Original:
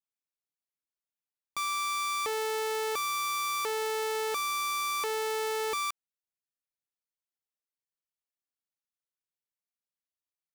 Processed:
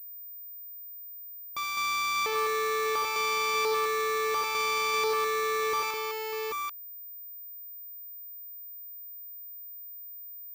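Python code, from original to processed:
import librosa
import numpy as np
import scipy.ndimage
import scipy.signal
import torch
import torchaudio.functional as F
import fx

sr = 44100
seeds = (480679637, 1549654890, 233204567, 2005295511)

y = fx.echo_multitap(x, sr, ms=(68, 206, 594, 778, 789), db=(-8.5, -5.5, -12.5, -8.0, -4.0))
y = fx.pwm(y, sr, carrier_hz=15000.0)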